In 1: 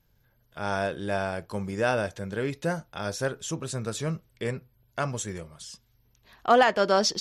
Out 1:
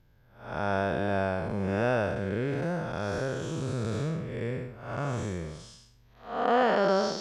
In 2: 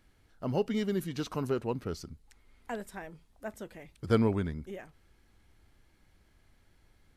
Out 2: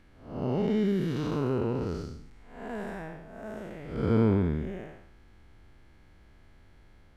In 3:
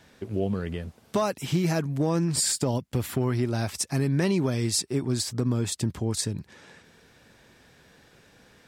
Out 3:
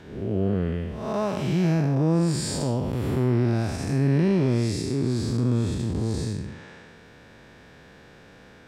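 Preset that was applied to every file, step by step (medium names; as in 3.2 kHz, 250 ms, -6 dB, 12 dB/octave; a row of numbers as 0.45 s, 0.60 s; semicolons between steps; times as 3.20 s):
spectral blur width 260 ms; low-pass 2.5 kHz 6 dB/octave; in parallel at -1 dB: compression, threshold -37 dBFS; on the sum: peak normalisation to -12 dBFS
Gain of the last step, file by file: +1.0 dB, +4.5 dB, +4.0 dB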